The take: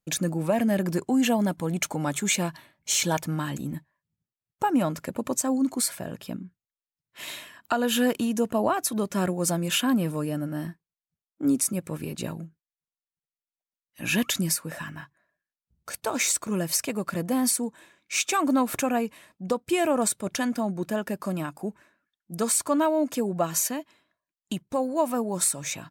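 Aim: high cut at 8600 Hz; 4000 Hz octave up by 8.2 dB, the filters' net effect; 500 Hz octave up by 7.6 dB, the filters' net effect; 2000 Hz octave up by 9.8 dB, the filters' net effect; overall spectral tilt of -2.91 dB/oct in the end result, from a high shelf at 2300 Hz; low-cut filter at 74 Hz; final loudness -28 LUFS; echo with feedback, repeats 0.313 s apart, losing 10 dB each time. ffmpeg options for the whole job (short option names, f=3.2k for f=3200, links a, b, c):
-af "highpass=74,lowpass=8.6k,equalizer=f=500:t=o:g=8.5,equalizer=f=2k:t=o:g=8.5,highshelf=f=2.3k:g=5,equalizer=f=4k:t=o:g=3,aecho=1:1:313|626|939|1252:0.316|0.101|0.0324|0.0104,volume=-7dB"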